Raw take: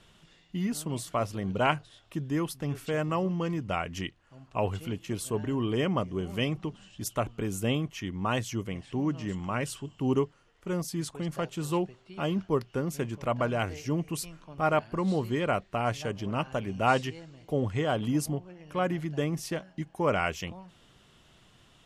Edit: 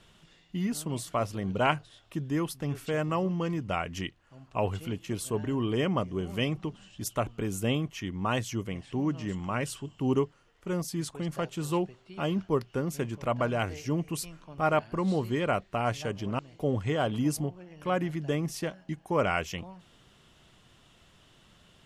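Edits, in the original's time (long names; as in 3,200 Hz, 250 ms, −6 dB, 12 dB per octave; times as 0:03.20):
0:16.39–0:17.28: remove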